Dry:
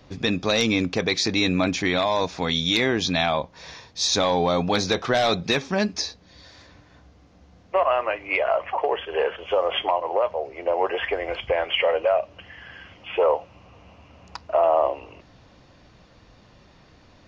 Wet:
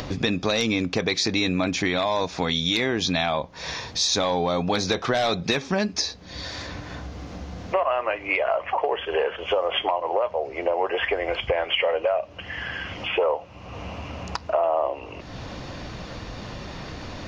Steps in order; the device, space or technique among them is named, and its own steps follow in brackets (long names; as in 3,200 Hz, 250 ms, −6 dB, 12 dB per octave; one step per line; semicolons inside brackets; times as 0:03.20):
upward and downward compression (upward compression, threshold −30 dBFS; downward compressor 3 to 1, threshold −28 dBFS, peak gain reduction 10 dB)
level +6 dB